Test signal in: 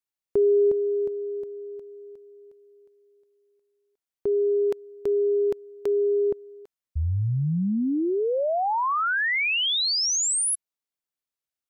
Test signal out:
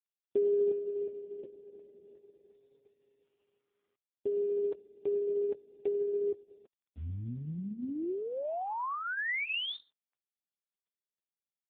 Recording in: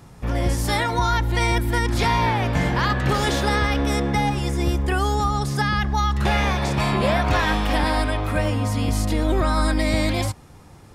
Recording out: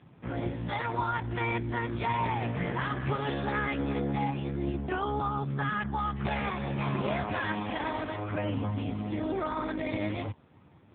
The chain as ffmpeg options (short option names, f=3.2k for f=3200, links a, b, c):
-af "volume=-6.5dB" -ar 8000 -c:a libopencore_amrnb -b:a 4750